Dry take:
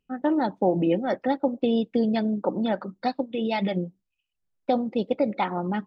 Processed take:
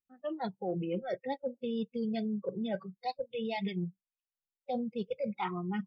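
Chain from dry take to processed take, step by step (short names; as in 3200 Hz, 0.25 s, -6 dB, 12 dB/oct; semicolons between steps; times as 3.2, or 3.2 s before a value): spectral noise reduction 25 dB; reverse; compressor 6:1, threshold -32 dBFS, peak gain reduction 14 dB; reverse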